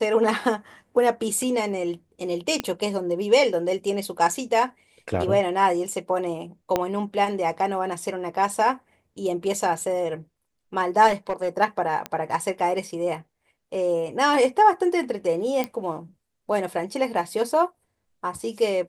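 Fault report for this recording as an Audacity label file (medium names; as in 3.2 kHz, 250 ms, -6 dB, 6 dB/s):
2.600000	2.600000	pop -10 dBFS
6.760000	6.760000	pop -8 dBFS
11.070000	11.570000	clipped -19 dBFS
12.060000	12.060000	pop -14 dBFS
15.640000	15.640000	pop -13 dBFS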